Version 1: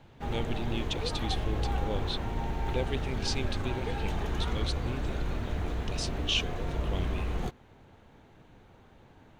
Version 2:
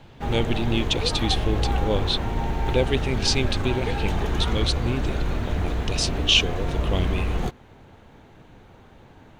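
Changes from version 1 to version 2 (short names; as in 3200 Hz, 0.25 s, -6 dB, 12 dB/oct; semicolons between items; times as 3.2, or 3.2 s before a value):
speech +11.0 dB; background +7.0 dB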